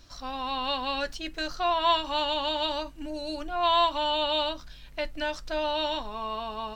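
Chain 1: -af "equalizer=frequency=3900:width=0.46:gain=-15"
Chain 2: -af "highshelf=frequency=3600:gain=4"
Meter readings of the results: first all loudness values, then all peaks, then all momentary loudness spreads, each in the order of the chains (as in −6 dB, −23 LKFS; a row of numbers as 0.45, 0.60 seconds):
−33.5, −27.5 LKFS; −18.5, −10.5 dBFS; 10, 12 LU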